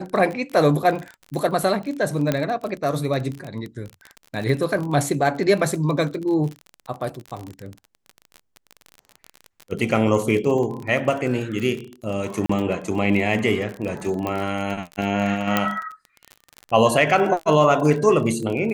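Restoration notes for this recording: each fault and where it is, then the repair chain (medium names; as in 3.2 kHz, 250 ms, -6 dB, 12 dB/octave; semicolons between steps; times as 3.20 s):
crackle 32 per s -27 dBFS
2.32 s: pop -8 dBFS
12.46–12.49 s: dropout 34 ms
14.27 s: pop -13 dBFS
15.57 s: pop -4 dBFS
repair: de-click; interpolate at 12.46 s, 34 ms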